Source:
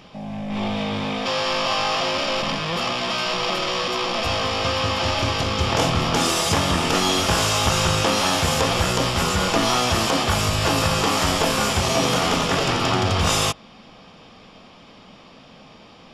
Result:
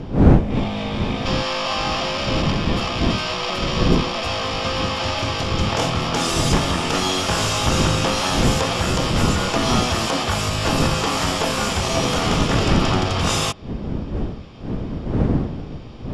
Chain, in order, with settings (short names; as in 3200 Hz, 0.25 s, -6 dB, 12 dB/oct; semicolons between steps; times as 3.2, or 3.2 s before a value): wind noise 230 Hz -22 dBFS; LPF 11000 Hz 12 dB/oct; gain -1 dB